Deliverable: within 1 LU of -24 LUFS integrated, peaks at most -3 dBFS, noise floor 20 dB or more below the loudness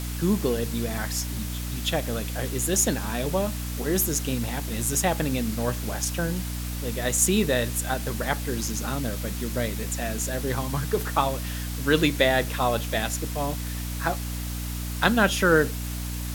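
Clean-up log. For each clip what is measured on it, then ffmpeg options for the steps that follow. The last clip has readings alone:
hum 60 Hz; harmonics up to 300 Hz; hum level -29 dBFS; noise floor -31 dBFS; noise floor target -46 dBFS; loudness -26.0 LUFS; peak -3.5 dBFS; loudness target -24.0 LUFS
-> -af "bandreject=f=60:t=h:w=4,bandreject=f=120:t=h:w=4,bandreject=f=180:t=h:w=4,bandreject=f=240:t=h:w=4,bandreject=f=300:t=h:w=4"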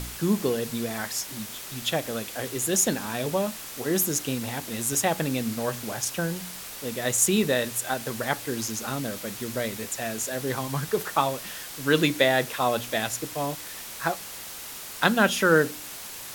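hum none; noise floor -39 dBFS; noise floor target -47 dBFS
-> -af "afftdn=nr=8:nf=-39"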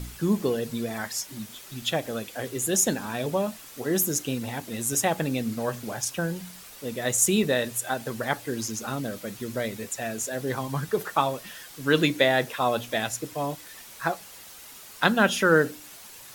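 noise floor -46 dBFS; noise floor target -47 dBFS
-> -af "afftdn=nr=6:nf=-46"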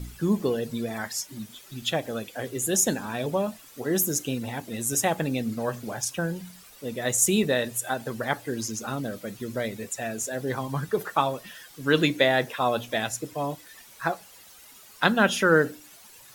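noise floor -50 dBFS; loudness -27.0 LUFS; peak -3.5 dBFS; loudness target -24.0 LUFS
-> -af "volume=3dB,alimiter=limit=-3dB:level=0:latency=1"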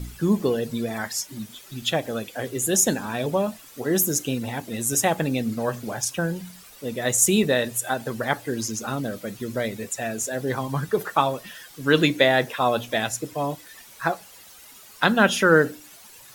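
loudness -24.0 LUFS; peak -3.0 dBFS; noise floor -47 dBFS

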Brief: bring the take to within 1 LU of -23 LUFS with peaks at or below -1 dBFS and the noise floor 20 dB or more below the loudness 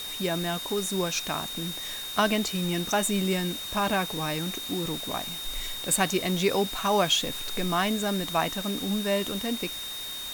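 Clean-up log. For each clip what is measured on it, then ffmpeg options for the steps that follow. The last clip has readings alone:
steady tone 3700 Hz; tone level -35 dBFS; noise floor -36 dBFS; noise floor target -48 dBFS; loudness -27.5 LUFS; peak -10.5 dBFS; loudness target -23.0 LUFS
-> -af "bandreject=f=3.7k:w=30"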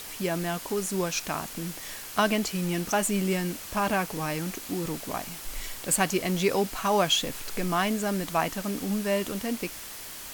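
steady tone none; noise floor -41 dBFS; noise floor target -49 dBFS
-> -af "afftdn=nr=8:nf=-41"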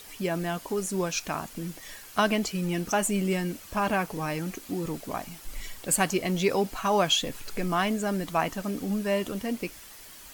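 noise floor -47 dBFS; noise floor target -49 dBFS
-> -af "afftdn=nr=6:nf=-47"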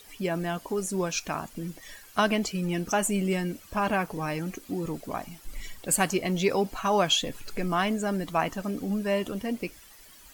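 noise floor -52 dBFS; loudness -28.5 LUFS; peak -10.5 dBFS; loudness target -23.0 LUFS
-> -af "volume=5.5dB"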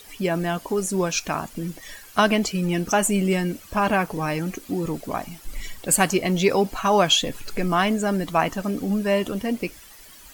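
loudness -23.0 LUFS; peak -5.0 dBFS; noise floor -46 dBFS

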